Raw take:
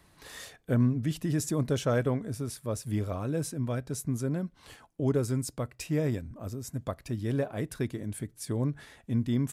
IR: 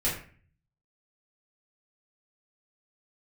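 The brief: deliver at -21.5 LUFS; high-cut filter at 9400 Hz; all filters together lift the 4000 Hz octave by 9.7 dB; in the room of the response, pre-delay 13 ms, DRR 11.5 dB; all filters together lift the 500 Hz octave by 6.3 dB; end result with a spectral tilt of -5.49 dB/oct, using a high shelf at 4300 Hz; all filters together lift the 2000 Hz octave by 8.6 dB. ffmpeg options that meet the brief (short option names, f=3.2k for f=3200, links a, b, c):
-filter_complex "[0:a]lowpass=9.4k,equalizer=f=500:t=o:g=7,equalizer=f=2k:t=o:g=8,equalizer=f=4k:t=o:g=7.5,highshelf=f=4.3k:g=5,asplit=2[a][b];[1:a]atrim=start_sample=2205,adelay=13[c];[b][c]afir=irnorm=-1:irlink=0,volume=-20dB[d];[a][d]amix=inputs=2:normalize=0,volume=6.5dB"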